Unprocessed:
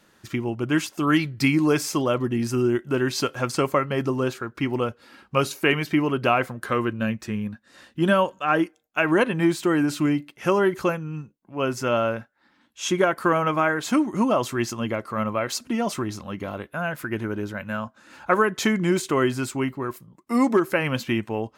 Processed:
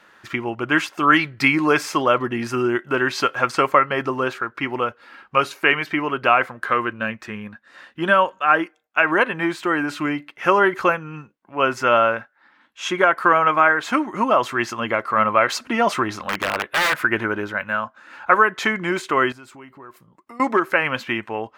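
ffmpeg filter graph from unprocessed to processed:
-filter_complex "[0:a]asettb=1/sr,asplit=3[a][b][c];[a]atrim=end=16.164[d];[b]atrim=start=16.16:end=16.97,asetpts=PTS-STARTPTS,afade=t=in:d=0.004:c=qsin,afade=t=out:st=0.806:d=0.004:c=qsin,lowshelf=f=100:g=-4,aeval=exprs='(mod(15.8*val(0)+1,2)-1)/15.8':c=same[e];[c]atrim=start=16.966[f];[d][e]acrossfade=d=0.004:c1=hsin:c2=qsin[g];[g][f]acrossfade=d=0.004:c1=qsin:c2=hsin,asettb=1/sr,asplit=3[h][i][j];[h]atrim=end=19.324[k];[i]atrim=start=19.32:end=20.4,asetpts=PTS-STARTPTS,afade=t=in:d=0.004:c=qsin,afade=t=out:st=1.076:d=0.004:c=qsin,equalizer=f=1.8k:t=o:w=1.8:g=-4.5,acompressor=threshold=-40dB:ratio=5:attack=3.2:release=140:knee=1:detection=peak[l];[j]atrim=start=20.396[m];[k][l]acrossfade=d=0.004:c1=hsin:c2=qsin[n];[n][m]acrossfade=d=0.004:c1=qsin:c2=hsin,equalizer=f=1.5k:t=o:w=2.8:g=12.5,dynaudnorm=f=230:g=9:m=11.5dB,bass=f=250:g=-4,treble=f=4k:g=-4,volume=-1dB"

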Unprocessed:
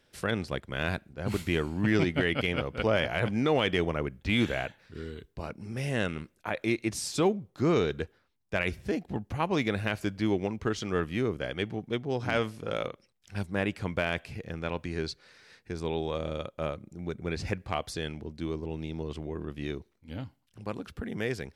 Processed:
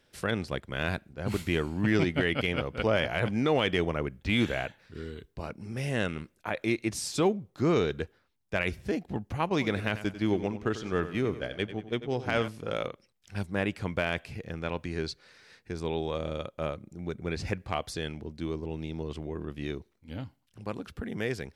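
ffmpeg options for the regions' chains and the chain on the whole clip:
-filter_complex "[0:a]asettb=1/sr,asplit=3[a][b][c];[a]atrim=end=9.494[d];[b]atrim=start=9.49:end=12.48,asetpts=PTS-STARTPTS,afade=t=in:d=0.004:c=qsin,afade=t=out:st=2.986:d=0.004:c=qsin,agate=range=-7dB:threshold=-35dB:ratio=16:release=100:detection=peak,aecho=1:1:94|188|282|376:0.224|0.0985|0.0433|0.0191,atrim=end_sample=131859[e];[c]atrim=start=12.476[f];[d][e]acrossfade=d=0.004:c1=hsin:c2=qsin[g];[g][f]acrossfade=d=0.004:c1=qsin:c2=hsin"

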